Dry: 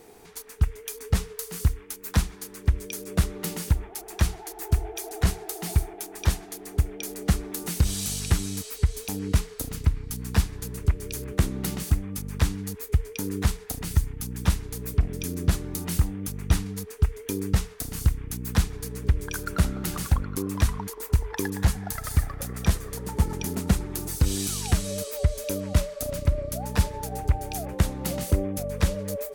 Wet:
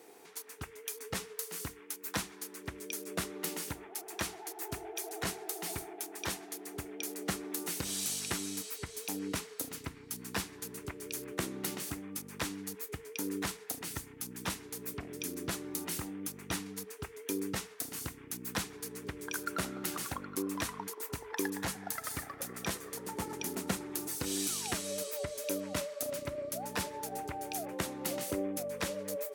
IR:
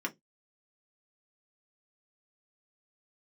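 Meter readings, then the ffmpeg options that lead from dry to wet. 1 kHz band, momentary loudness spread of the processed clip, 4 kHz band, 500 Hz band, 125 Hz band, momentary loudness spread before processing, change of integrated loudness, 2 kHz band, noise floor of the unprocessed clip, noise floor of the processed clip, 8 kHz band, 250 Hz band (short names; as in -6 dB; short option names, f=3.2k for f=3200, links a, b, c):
-4.5 dB, 7 LU, -4.5 dB, -5.5 dB, -21.0 dB, 6 LU, -10.0 dB, -3.5 dB, -45 dBFS, -52 dBFS, -4.0 dB, -8.5 dB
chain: -filter_complex "[0:a]highpass=250,asplit=2[a][b];[1:a]atrim=start_sample=2205,asetrate=41013,aresample=44100[c];[b][c]afir=irnorm=-1:irlink=0,volume=-17dB[d];[a][d]amix=inputs=2:normalize=0,volume=-5dB"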